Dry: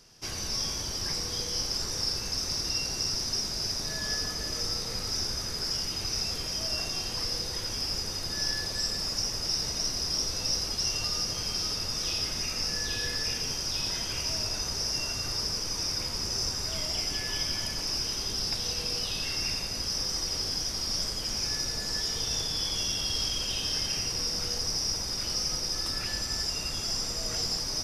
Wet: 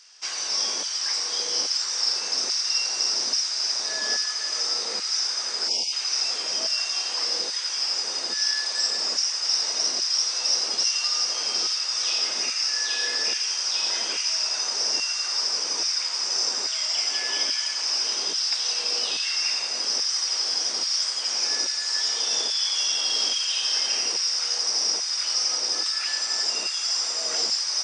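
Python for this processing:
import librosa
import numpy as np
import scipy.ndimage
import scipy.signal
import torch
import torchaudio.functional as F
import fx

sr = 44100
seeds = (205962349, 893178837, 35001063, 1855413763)

y = fx.brickwall_bandpass(x, sr, low_hz=170.0, high_hz=9000.0)
y = fx.filter_lfo_highpass(y, sr, shape='saw_down', hz=1.2, low_hz=350.0, high_hz=1600.0, q=0.75)
y = fx.spec_erase(y, sr, start_s=5.68, length_s=0.25, low_hz=1000.0, high_hz=2100.0)
y = y * 10.0 ** (6.5 / 20.0)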